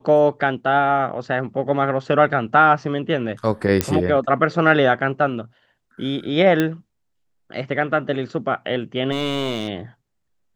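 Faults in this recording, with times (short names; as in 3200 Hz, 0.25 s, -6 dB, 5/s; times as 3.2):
3.81 pop -2 dBFS
6.6 pop -7 dBFS
9.11–9.69 clipped -17.5 dBFS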